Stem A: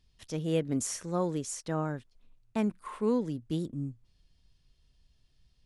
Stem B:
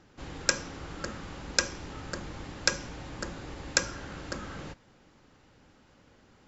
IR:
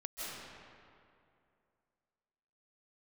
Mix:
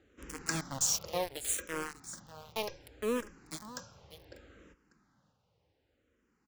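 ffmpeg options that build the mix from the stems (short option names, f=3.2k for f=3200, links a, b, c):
-filter_complex "[0:a]tiltshelf=f=970:g=-8,aeval=exprs='val(0)*gte(abs(val(0)),0.0299)':c=same,volume=2dB,asplit=2[a][b];[b]volume=-14.5dB[c];[1:a]volume=16dB,asoftclip=hard,volume=-16dB,highpass=47,lowshelf=f=150:g=3.5,volume=-6dB,afade=t=out:st=0.79:d=0.55:silence=0.354813,asplit=3[d][e][f];[e]volume=-22.5dB[g];[f]volume=-16.5dB[h];[2:a]atrim=start_sample=2205[i];[g][i]afir=irnorm=-1:irlink=0[j];[c][h]amix=inputs=2:normalize=0,aecho=0:1:594:1[k];[a][d][j][k]amix=inputs=4:normalize=0,equalizer=f=470:t=o:w=0.41:g=4,asplit=2[l][m];[m]afreqshift=-0.67[n];[l][n]amix=inputs=2:normalize=1"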